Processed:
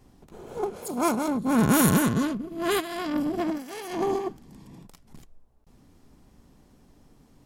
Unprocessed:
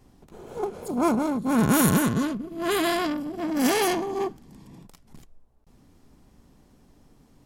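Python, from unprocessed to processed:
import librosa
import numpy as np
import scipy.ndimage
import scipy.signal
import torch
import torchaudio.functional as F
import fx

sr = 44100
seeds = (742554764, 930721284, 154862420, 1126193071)

y = fx.tilt_eq(x, sr, slope=2.0, at=(0.76, 1.28))
y = fx.over_compress(y, sr, threshold_db=-29.0, ratio=-0.5, at=(2.79, 4.27), fade=0.02)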